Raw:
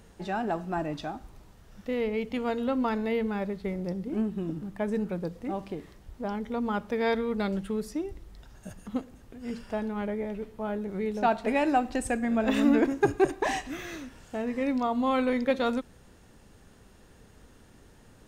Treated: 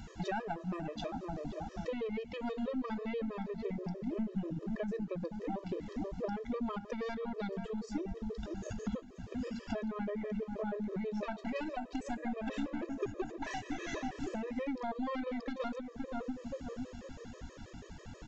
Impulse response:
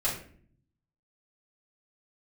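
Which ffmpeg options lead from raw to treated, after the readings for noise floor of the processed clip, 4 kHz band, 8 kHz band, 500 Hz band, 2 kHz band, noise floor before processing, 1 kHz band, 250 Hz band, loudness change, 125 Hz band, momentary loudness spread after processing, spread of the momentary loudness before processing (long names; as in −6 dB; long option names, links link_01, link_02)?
−53 dBFS, −8.5 dB, −10.0 dB, −9.0 dB, −10.5 dB, −56 dBFS, −10.5 dB, −8.5 dB, −10.0 dB, −5.0 dB, 5 LU, 14 LU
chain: -filter_complex "[0:a]aeval=exprs='(tanh(10*val(0)+0.55)-tanh(0.55))/10':channel_layout=same,asplit=2[link_01][link_02];[link_02]adelay=520,lowpass=frequency=900:poles=1,volume=-10dB,asplit=2[link_03][link_04];[link_04]adelay=520,lowpass=frequency=900:poles=1,volume=0.36,asplit=2[link_05][link_06];[link_06]adelay=520,lowpass=frequency=900:poles=1,volume=0.36,asplit=2[link_07][link_08];[link_08]adelay=520,lowpass=frequency=900:poles=1,volume=0.36[link_09];[link_03][link_05][link_07][link_09]amix=inputs=4:normalize=0[link_10];[link_01][link_10]amix=inputs=2:normalize=0,aresample=16000,aresample=44100,acompressor=threshold=-41dB:ratio=16,afftfilt=real='re*gt(sin(2*PI*6.2*pts/sr)*(1-2*mod(floor(b*sr/1024/330),2)),0)':imag='im*gt(sin(2*PI*6.2*pts/sr)*(1-2*mod(floor(b*sr/1024/330),2)),0)':win_size=1024:overlap=0.75,volume=10.5dB"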